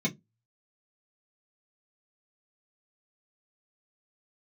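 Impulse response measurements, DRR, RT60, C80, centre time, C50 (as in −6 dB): −5.0 dB, 0.15 s, 32.5 dB, 12 ms, 21.5 dB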